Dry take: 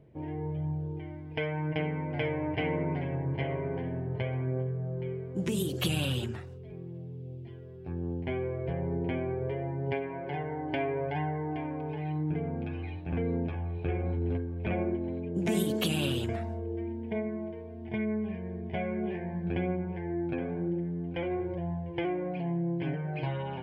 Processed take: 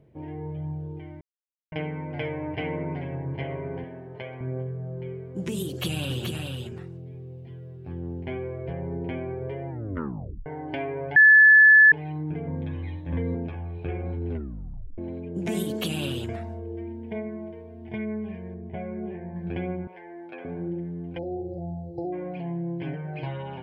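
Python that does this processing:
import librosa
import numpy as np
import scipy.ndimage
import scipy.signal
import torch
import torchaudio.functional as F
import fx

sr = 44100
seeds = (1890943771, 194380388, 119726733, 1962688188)

y = fx.highpass(x, sr, hz=400.0, slope=6, at=(3.84, 4.41))
y = fx.echo_single(y, sr, ms=428, db=-4.5, at=(5.67, 8.37))
y = fx.ripple_eq(y, sr, per_octave=1.1, db=12, at=(12.47, 13.35))
y = fx.spacing_loss(y, sr, db_at_10k=35, at=(18.54, 19.36))
y = fx.highpass(y, sr, hz=570.0, slope=12, at=(19.87, 20.45))
y = fx.brickwall_bandstop(y, sr, low_hz=870.0, high_hz=3900.0, at=(21.17, 22.12), fade=0.02)
y = fx.edit(y, sr, fx.silence(start_s=1.21, length_s=0.51),
    fx.tape_stop(start_s=9.69, length_s=0.77),
    fx.bleep(start_s=11.16, length_s=0.76, hz=1730.0, db=-10.0),
    fx.tape_stop(start_s=14.31, length_s=0.67), tone=tone)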